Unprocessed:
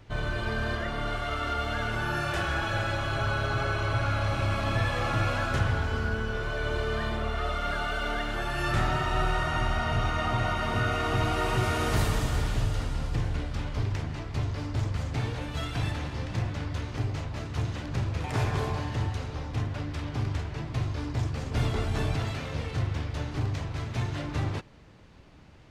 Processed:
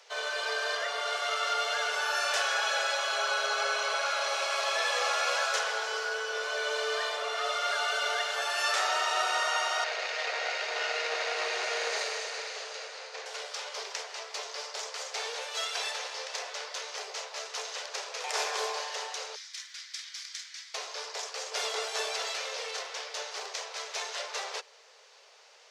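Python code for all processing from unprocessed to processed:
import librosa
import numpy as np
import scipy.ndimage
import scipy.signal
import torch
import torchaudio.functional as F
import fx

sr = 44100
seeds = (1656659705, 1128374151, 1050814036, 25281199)

y = fx.chain(x, sr, fx.lower_of_two(delay_ms=0.45),
    fx.lowpass(hz=5700.0, slope=12),
    fx.high_shelf(hz=3600.0, db=-6.5), at=(9.84, 13.26))
y = fx.chain(y, sr, fx.cheby2_highpass(hz=420.0, order=4, stop_db=70),
    fx.peak_eq(hz=2700.0, db=-9.5, octaves=0.27), at=(19.35, 20.74))
y = scipy.signal.sosfilt(scipy.signal.butter(16, 420.0, 'highpass', fs=sr, output='sos'), y)
y = fx.peak_eq(y, sr, hz=5800.0, db=13.5, octaves=1.4)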